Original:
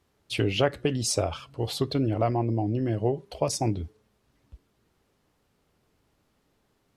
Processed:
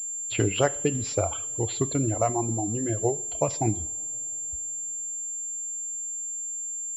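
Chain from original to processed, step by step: reverb removal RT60 1.9 s; two-slope reverb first 0.53 s, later 4.8 s, from -20 dB, DRR 14 dB; class-D stage that switches slowly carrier 7.3 kHz; trim +1.5 dB

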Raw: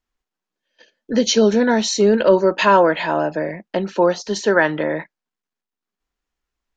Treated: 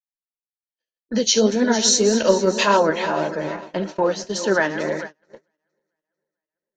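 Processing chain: backward echo that repeats 223 ms, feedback 68%, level -12 dB; tone controls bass +1 dB, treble +8 dB, from 1.73 s treble +14 dB, from 2.79 s treble +6 dB; gate -26 dBFS, range -35 dB; flange 1.8 Hz, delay 2.9 ms, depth 8.3 ms, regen +52%

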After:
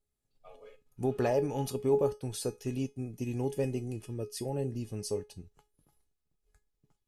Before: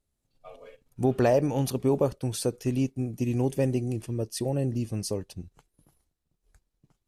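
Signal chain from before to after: feedback comb 420 Hz, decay 0.21 s, harmonics all, mix 80%; trim +5 dB

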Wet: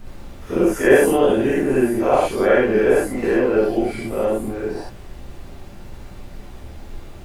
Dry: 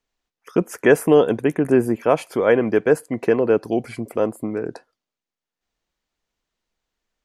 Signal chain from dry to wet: every event in the spectrogram widened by 120 ms; added noise brown -28 dBFS; gated-style reverb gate 90 ms rising, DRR -6 dB; trim -10.5 dB

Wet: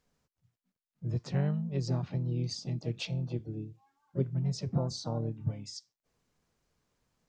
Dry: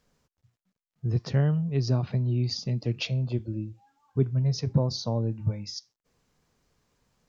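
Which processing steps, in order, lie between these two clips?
harmony voices +5 st -8 dB; trim -7 dB

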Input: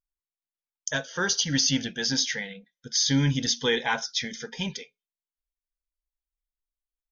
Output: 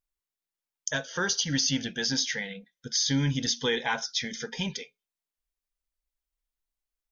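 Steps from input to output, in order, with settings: compression 1.5:1, threshold -35 dBFS, peak gain reduction 6 dB; trim +2.5 dB

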